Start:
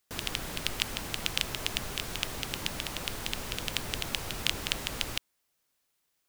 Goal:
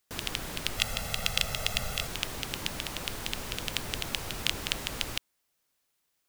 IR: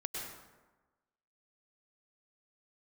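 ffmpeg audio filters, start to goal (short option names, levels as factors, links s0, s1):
-filter_complex "[0:a]asettb=1/sr,asplit=3[s0][s1][s2];[s0]atrim=end=0.774[s3];[s1]atrim=start=0.77:end=2.07,asetpts=PTS-STARTPTS,afade=t=in:d=0.004:c=qsin,afade=t=out:st=1.296:d=0.004:c=qsin,aecho=1:1:1.5:0.85,atrim=end_sample=57330[s4];[s2]atrim=start=2.066[s5];[s3][s4]acrossfade=d=0.004:c1=hsin:c2=qsin[s6];[s6][s5]acrossfade=d=0.004:c1=qsin:c2=hsin"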